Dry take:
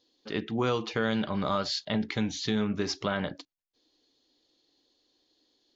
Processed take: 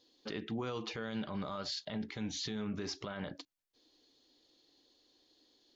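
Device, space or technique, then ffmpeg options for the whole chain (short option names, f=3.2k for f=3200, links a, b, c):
stacked limiters: -af "alimiter=limit=-21dB:level=0:latency=1:release=478,alimiter=level_in=3.5dB:limit=-24dB:level=0:latency=1:release=288,volume=-3.5dB,alimiter=level_in=7dB:limit=-24dB:level=0:latency=1:release=32,volume=-7dB,volume=1.5dB"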